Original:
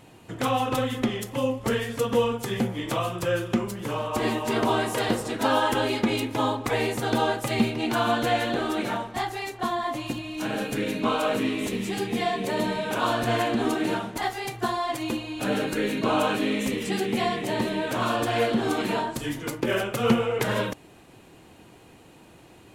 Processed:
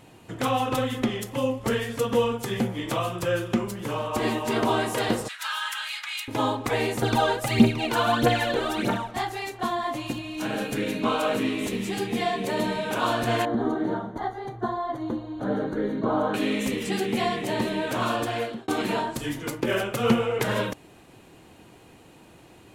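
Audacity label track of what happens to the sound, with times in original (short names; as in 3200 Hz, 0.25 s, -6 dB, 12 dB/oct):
5.280000	6.280000	inverse Chebyshev high-pass stop band from 390 Hz, stop band 60 dB
7.020000	9.110000	phaser 1.6 Hz, delay 2.3 ms, feedback 61%
13.450000	16.340000	running mean over 17 samples
17.940000	18.680000	fade out equal-power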